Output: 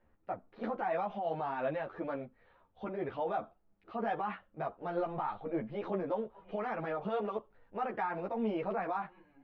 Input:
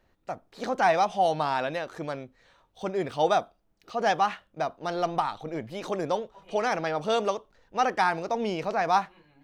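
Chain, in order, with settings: Bessel low-pass 1800 Hz, order 4; limiter -23.5 dBFS, peak gain reduction 11 dB; ensemble effect

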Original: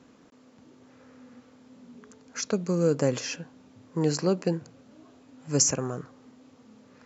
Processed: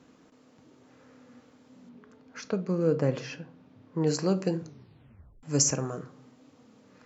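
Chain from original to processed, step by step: 1.89–4.07 air absorption 190 m; shoebox room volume 300 m³, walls furnished, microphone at 0.52 m; 4.62 tape stop 0.81 s; gain -2 dB

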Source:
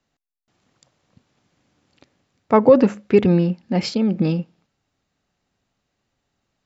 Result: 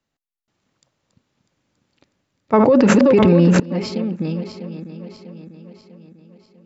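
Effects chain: regenerating reverse delay 0.323 s, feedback 69%, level -10 dB; notch 730 Hz, Q 18; 2.53–3.6 fast leveller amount 100%; gain -4.5 dB

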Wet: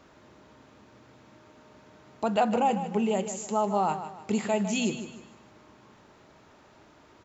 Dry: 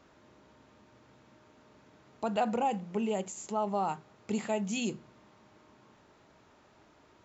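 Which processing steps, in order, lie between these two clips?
feedback echo 0.153 s, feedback 37%, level -11 dB; gain +5 dB

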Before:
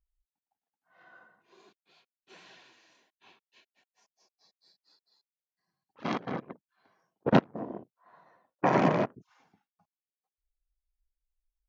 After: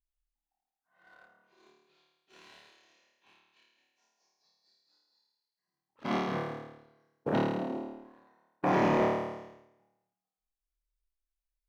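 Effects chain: limiter -15 dBFS, peak gain reduction 8.5 dB; flutter echo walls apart 4.6 m, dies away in 1.1 s; sample leveller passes 1; gain -7.5 dB

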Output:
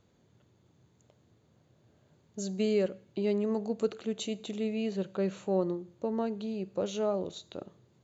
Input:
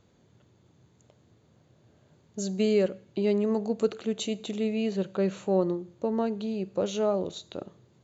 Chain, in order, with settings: gain -4 dB

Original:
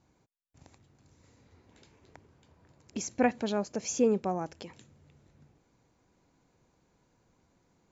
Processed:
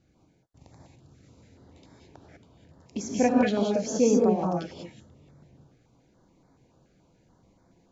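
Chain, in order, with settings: air absorption 73 m; non-linear reverb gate 0.22 s rising, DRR -2 dB; stepped notch 7 Hz 970–2800 Hz; gain +3.5 dB

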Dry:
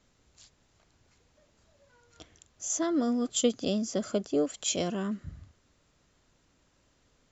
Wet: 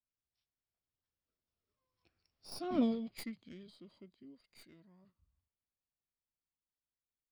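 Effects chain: tracing distortion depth 0.085 ms; Doppler pass-by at 2.82, 23 m/s, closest 1.2 m; formant shift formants -6 st

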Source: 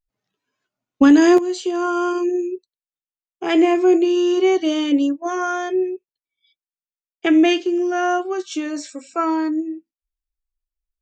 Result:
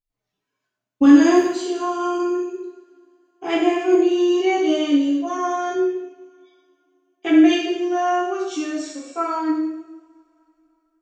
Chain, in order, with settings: two-slope reverb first 0.85 s, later 3.4 s, from -28 dB, DRR -7 dB; gain -9 dB

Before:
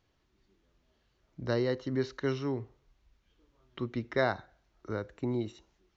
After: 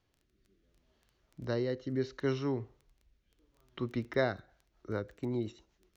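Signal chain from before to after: crackle 10/s -43 dBFS; rotary speaker horn 0.7 Hz, later 8 Hz, at 4.18

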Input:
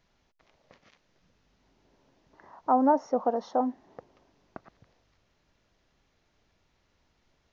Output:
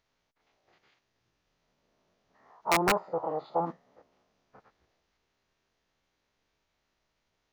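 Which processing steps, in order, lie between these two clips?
stepped spectrum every 50 ms; low shelf 330 Hz -7 dB; formant-preserving pitch shift -7 st; wrapped overs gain 17.5 dB; dynamic EQ 1200 Hz, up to +7 dB, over -43 dBFS, Q 0.92; gain -2.5 dB

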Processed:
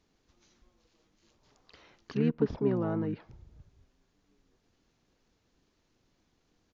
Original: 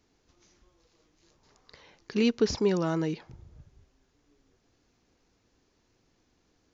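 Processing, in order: treble ducked by the level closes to 1500 Hz, closed at -25.5 dBFS; harmoniser -7 st -3 dB; gain -4.5 dB

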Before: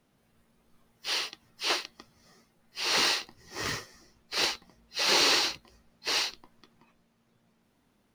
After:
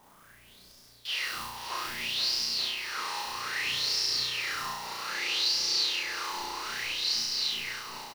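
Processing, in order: zero-crossing step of -34.5 dBFS; gate with hold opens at -33 dBFS; high shelf 7300 Hz +8 dB; bouncing-ball echo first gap 0.48 s, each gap 0.85×, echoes 5; reverse; compressor 5:1, threshold -39 dBFS, peak gain reduction 18.5 dB; reverse; flutter echo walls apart 5.8 m, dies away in 1.3 s; LFO bell 0.62 Hz 920–5200 Hz +18 dB; gain -5 dB

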